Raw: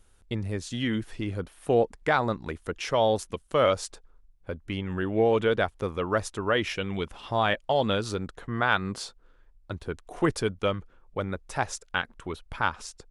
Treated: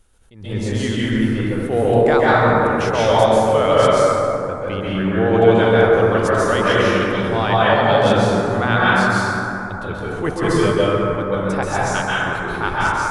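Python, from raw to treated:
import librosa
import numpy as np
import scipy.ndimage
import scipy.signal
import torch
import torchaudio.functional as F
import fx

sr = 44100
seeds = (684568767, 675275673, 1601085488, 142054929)

y = fx.rev_plate(x, sr, seeds[0], rt60_s=3.3, hf_ratio=0.35, predelay_ms=120, drr_db=-8.5)
y = fx.attack_slew(y, sr, db_per_s=110.0)
y = y * 10.0 ** (2.5 / 20.0)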